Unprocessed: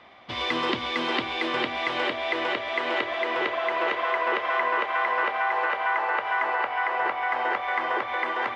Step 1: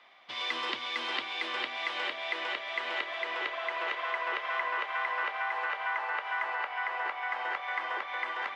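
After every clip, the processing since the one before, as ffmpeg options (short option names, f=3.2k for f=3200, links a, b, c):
-af "highpass=f=1.4k:p=1,volume=-3.5dB"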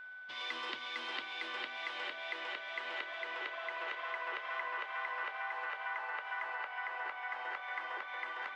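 -af "aeval=exprs='val(0)+0.0112*sin(2*PI*1500*n/s)':c=same,equalizer=f=95:t=o:w=0.77:g=-4,volume=-7.5dB"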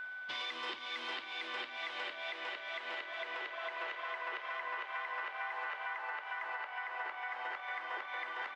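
-filter_complex "[0:a]alimiter=level_in=12.5dB:limit=-24dB:level=0:latency=1:release=407,volume=-12.5dB,asplit=2[a][b];[b]adelay=49,volume=-13dB[c];[a][c]amix=inputs=2:normalize=0,volume=6.5dB"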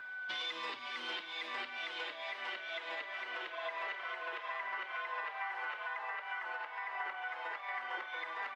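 -filter_complex "[0:a]acrossover=split=250[a][b];[a]acrusher=samples=22:mix=1:aa=0.000001:lfo=1:lforange=35.2:lforate=0.97[c];[c][b]amix=inputs=2:normalize=0,asplit=2[d][e];[e]adelay=4.6,afreqshift=-1.3[f];[d][f]amix=inputs=2:normalize=1,volume=3dB"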